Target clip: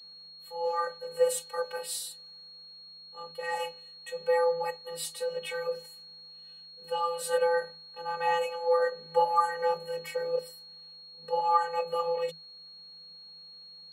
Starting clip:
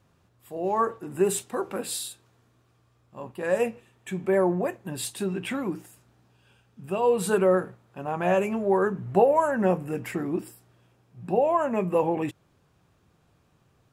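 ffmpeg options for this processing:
-filter_complex "[0:a]aeval=exprs='val(0)+0.00501*sin(2*PI*4100*n/s)':c=same,acrossover=split=160[a][b];[a]acompressor=threshold=-55dB:ratio=6[c];[c][b]amix=inputs=2:normalize=0,afftfilt=real='hypot(re,im)*cos(PI*b)':imag='0':win_size=512:overlap=0.75,afreqshift=160"

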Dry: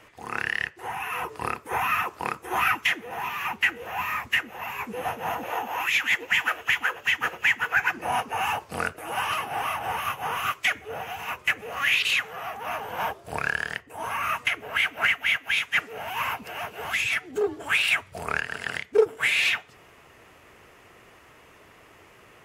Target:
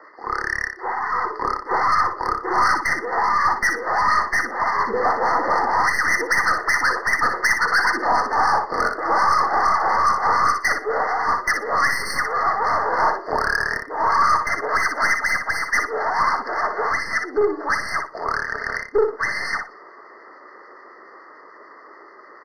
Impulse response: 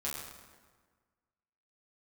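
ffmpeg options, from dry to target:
-filter_complex "[0:a]tiltshelf=f=1.3k:g=9.5,dynaudnorm=f=540:g=9:m=11.5dB,highpass=f=370:w=0.5412,highpass=f=370:w=1.3066,equalizer=f=470:t=q:w=4:g=-5,equalizer=f=710:t=q:w=4:g=-7,equalizer=f=1.2k:t=q:w=4:g=10,equalizer=f=1.9k:t=q:w=4:g=7,equalizer=f=3k:t=q:w=4:g=8,equalizer=f=4.7k:t=q:w=4:g=9,lowpass=f=5.2k:w=0.5412,lowpass=f=5.2k:w=1.3066,asplit=2[a][b];[b]acompressor=threshold=-21dB:ratio=6,volume=2dB[c];[a][c]amix=inputs=2:normalize=0,aeval=exprs='(tanh(3.98*val(0)+0.25)-tanh(0.25))/3.98':c=same,acrossover=split=1400[d][e];[d]aeval=exprs='val(0)*(1-0.5/2+0.5/2*cos(2*PI*6.9*n/s))':c=same[f];[e]aeval=exprs='val(0)*(1-0.5/2-0.5/2*cos(2*PI*6.9*n/s))':c=same[g];[f][g]amix=inputs=2:normalize=0,asplit=2[h][i];[i]aecho=0:1:60|120|180:0.473|0.0852|0.0153[j];[h][j]amix=inputs=2:normalize=0,afftfilt=real='re*eq(mod(floor(b*sr/1024/2100),2),0)':imag='im*eq(mod(floor(b*sr/1024/2100),2),0)':win_size=1024:overlap=0.75"

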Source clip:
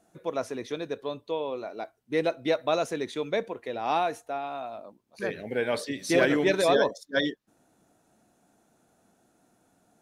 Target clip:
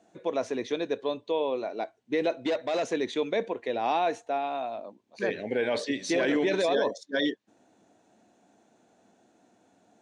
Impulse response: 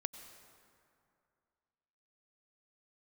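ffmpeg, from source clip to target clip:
-filter_complex "[0:a]alimiter=limit=-21dB:level=0:latency=1:release=12,asettb=1/sr,asplit=3[a][b][c];[a]atrim=end=2.364[d];[b]atrim=start=2.36:end=2.93,asetpts=PTS-STARTPTS,afade=t=in:d=0.004:c=qsin,afade=t=out:st=0.566:d=0.004:c=qsin,asoftclip=type=hard:threshold=-27dB[e];[c]atrim=start=2.926[f];[d][e]acrossfade=d=0.004:c1=hsin:c2=qsin[g];[g][f]acrossfade=d=0.004:c1=qsin:c2=hsin,highpass=130,equalizer=f=150:t=q:w=4:g=-9,equalizer=f=1.3k:t=q:w=4:g=-7,equalizer=f=5.1k:t=q:w=4:g=-5,lowpass=f=6.9k:w=0.5412,lowpass=f=6.9k:w=1.3066,volume=4dB"

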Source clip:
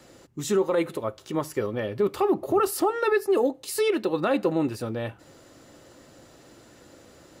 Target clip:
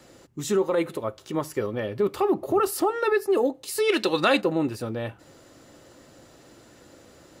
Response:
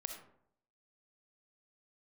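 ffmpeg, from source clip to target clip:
-filter_complex "[0:a]asplit=3[a][b][c];[a]afade=t=out:st=3.88:d=0.02[d];[b]equalizer=f=5.2k:w=0.3:g=14.5,afade=t=in:st=3.88:d=0.02,afade=t=out:st=4.4:d=0.02[e];[c]afade=t=in:st=4.4:d=0.02[f];[d][e][f]amix=inputs=3:normalize=0"

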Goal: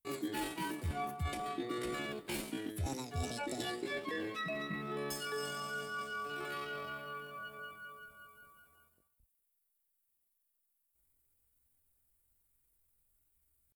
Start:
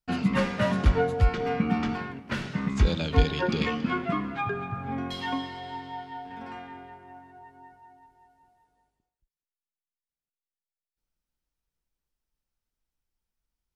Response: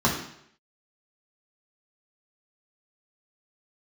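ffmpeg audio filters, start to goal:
-af "areverse,acompressor=threshold=-41dB:ratio=5,areverse,aexciter=amount=6.2:drive=6:freq=5.4k,asetrate=70004,aresample=44100,atempo=0.629961,volume=3dB"

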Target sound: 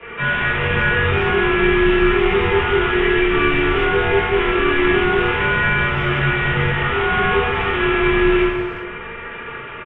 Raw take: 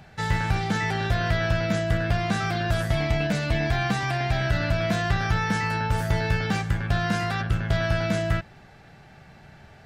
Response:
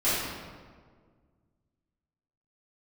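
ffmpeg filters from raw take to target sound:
-filter_complex "[0:a]lowshelf=f=100:g=5.5,aecho=1:1:4.1:0.81,bandreject=f=68.31:t=h:w=4,bandreject=f=136.62:t=h:w=4,bandreject=f=204.93:t=h:w=4,bandreject=f=273.24:t=h:w=4,bandreject=f=341.55:t=h:w=4,bandreject=f=409.86:t=h:w=4,acrossover=split=680[a][b];[b]acompressor=threshold=-39dB:ratio=10[c];[a][c]amix=inputs=2:normalize=0,alimiter=limit=-19.5dB:level=0:latency=1:release=25,aresample=8000,acrusher=bits=4:mode=log:mix=0:aa=0.000001,aresample=44100,crystalizer=i=9.5:c=0[d];[1:a]atrim=start_sample=2205[e];[d][e]afir=irnorm=-1:irlink=0,highpass=f=310:t=q:w=0.5412,highpass=f=310:t=q:w=1.307,lowpass=f=3.1k:t=q:w=0.5176,lowpass=f=3.1k:t=q:w=0.7071,lowpass=f=3.1k:t=q:w=1.932,afreqshift=-300,asplit=2[f][g];[g]adelay=360,highpass=300,lowpass=3.4k,asoftclip=type=hard:threshold=-14dB,volume=-24dB[h];[f][h]amix=inputs=2:normalize=0"

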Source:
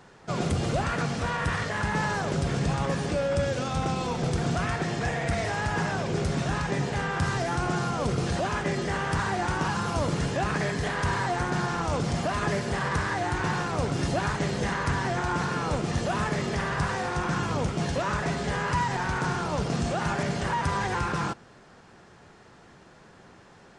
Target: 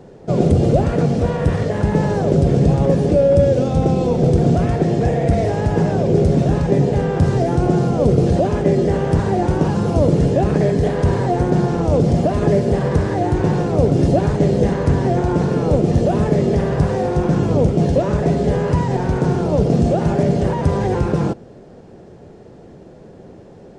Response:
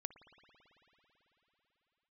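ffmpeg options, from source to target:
-af "lowshelf=f=790:t=q:w=1.5:g=13.5,volume=-1dB"

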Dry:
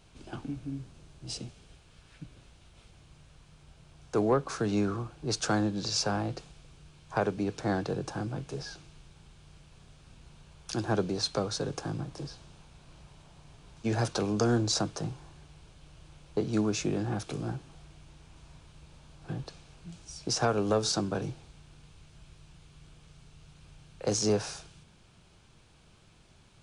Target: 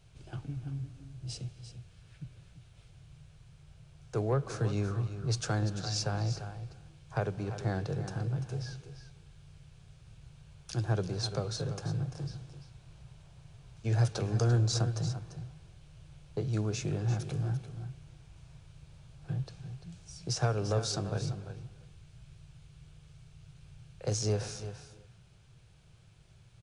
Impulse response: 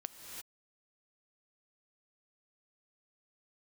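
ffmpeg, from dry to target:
-filter_complex "[0:a]equalizer=f=125:t=o:w=1:g=10,equalizer=f=250:t=o:w=1:g=-12,equalizer=f=1k:t=o:w=1:g=-6,aecho=1:1:343:0.282,asplit=2[a][b];[1:a]atrim=start_sample=2205,lowpass=2.4k[c];[b][c]afir=irnorm=-1:irlink=0,volume=-5dB[d];[a][d]amix=inputs=2:normalize=0,volume=-4.5dB"

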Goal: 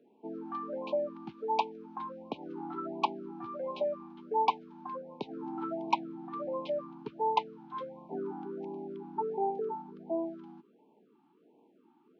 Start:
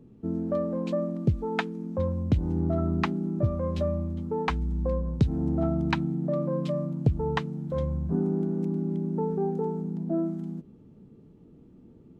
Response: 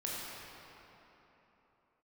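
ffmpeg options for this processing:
-filter_complex "[0:a]acrossover=split=460 3200:gain=0.0891 1 0.251[a][b][c];[a][b][c]amix=inputs=3:normalize=0,aresample=16000,volume=22.5dB,asoftclip=hard,volume=-22.5dB,aresample=44100,highpass=f=210:w=0.5412,highpass=f=210:w=1.3066,equalizer=f=530:t=q:w=4:g=-5,equalizer=f=880:t=q:w=4:g=7,equalizer=f=1.9k:t=q:w=4:g=-9,lowpass=f=4.9k:w=0.5412,lowpass=f=4.9k:w=1.3066,afftfilt=real='re*(1-between(b*sr/1024,490*pow(1600/490,0.5+0.5*sin(2*PI*1.4*pts/sr))/1.41,490*pow(1600/490,0.5+0.5*sin(2*PI*1.4*pts/sr))*1.41))':imag='im*(1-between(b*sr/1024,490*pow(1600/490,0.5+0.5*sin(2*PI*1.4*pts/sr))/1.41,490*pow(1600/490,0.5+0.5*sin(2*PI*1.4*pts/sr))*1.41))':win_size=1024:overlap=0.75,volume=3.5dB"

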